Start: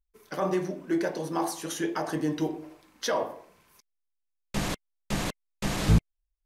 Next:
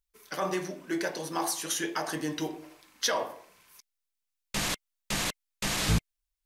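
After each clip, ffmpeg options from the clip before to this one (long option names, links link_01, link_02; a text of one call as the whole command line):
ffmpeg -i in.wav -af "tiltshelf=frequency=1100:gain=-6" out.wav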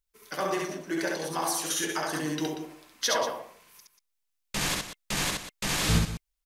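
ffmpeg -i in.wav -af "aecho=1:1:67.06|186.6:0.794|0.282" out.wav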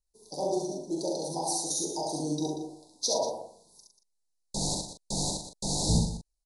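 ffmpeg -i in.wav -filter_complex "[0:a]asuperstop=centerf=1900:order=20:qfactor=0.65,asplit=2[link_01][link_02];[link_02]adelay=41,volume=-6.5dB[link_03];[link_01][link_03]amix=inputs=2:normalize=0" -ar 24000 -c:a libmp3lame -b:a 160k out.mp3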